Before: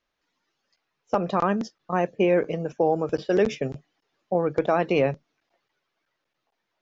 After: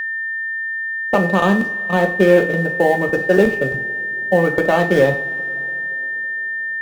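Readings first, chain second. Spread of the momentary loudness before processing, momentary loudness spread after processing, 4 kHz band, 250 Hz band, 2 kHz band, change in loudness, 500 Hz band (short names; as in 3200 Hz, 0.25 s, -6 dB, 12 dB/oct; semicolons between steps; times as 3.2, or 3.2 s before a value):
8 LU, 8 LU, +8.5 dB, +8.0 dB, +20.0 dB, +7.5 dB, +8.0 dB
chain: median filter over 25 samples; in parallel at -6 dB: short-mantissa float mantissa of 2-bit; on the sum: two-slope reverb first 0.41 s, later 4.1 s, from -22 dB, DRR 3.5 dB; whine 1800 Hz -24 dBFS; gain +3 dB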